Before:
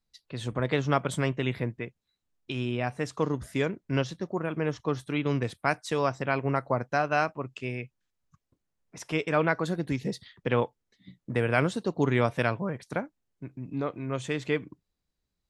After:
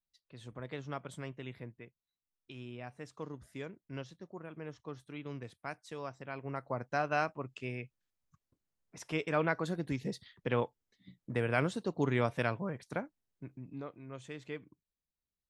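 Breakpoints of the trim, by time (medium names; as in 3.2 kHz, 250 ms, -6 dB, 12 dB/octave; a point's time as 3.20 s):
6.29 s -15.5 dB
7.01 s -6 dB
13.50 s -6 dB
13.93 s -14.5 dB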